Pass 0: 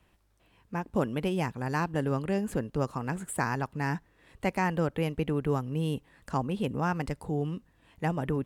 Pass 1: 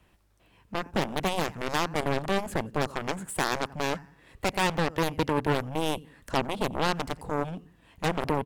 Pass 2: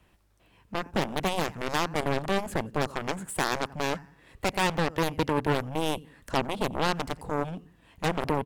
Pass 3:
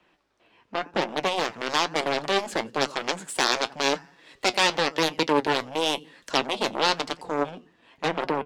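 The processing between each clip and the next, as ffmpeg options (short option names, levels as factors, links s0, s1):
-af "aecho=1:1:88|176|264:0.0891|0.0348|0.0136,aeval=exprs='0.2*(cos(1*acos(clip(val(0)/0.2,-1,1)))-cos(1*PI/2))+0.0447*(cos(7*acos(clip(val(0)/0.2,-1,1)))-cos(7*PI/2))':c=same,aeval=exprs='0.2*sin(PI/2*1.78*val(0)/0.2)':c=same,volume=0.891"
-af anull
-filter_complex "[0:a]flanger=delay=5.4:depth=3.8:regen=61:speed=0.97:shape=triangular,acrossover=split=230 5900:gain=0.1 1 0.0891[s0][s1][s2];[s0][s1][s2]amix=inputs=3:normalize=0,acrossover=split=3700[s3][s4];[s4]dynaudnorm=f=300:g=11:m=4.22[s5];[s3][s5]amix=inputs=2:normalize=0,volume=2.37"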